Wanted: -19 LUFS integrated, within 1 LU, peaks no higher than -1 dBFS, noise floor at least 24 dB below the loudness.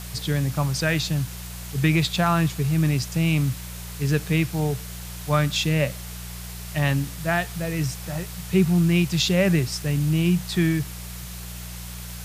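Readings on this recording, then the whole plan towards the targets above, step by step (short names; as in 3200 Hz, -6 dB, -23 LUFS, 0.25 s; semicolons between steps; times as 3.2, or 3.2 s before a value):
hum 60 Hz; harmonics up to 180 Hz; hum level -34 dBFS; noise floor -36 dBFS; noise floor target -48 dBFS; loudness -23.5 LUFS; peak -7.0 dBFS; loudness target -19.0 LUFS
-> de-hum 60 Hz, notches 3; noise print and reduce 12 dB; gain +4.5 dB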